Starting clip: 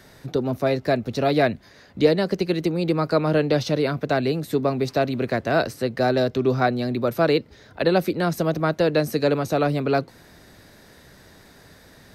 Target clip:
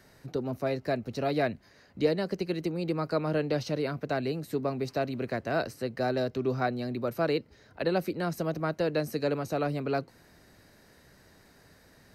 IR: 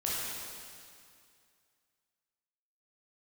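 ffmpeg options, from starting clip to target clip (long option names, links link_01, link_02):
-af "bandreject=frequency=3500:width=8.8,volume=-8.5dB"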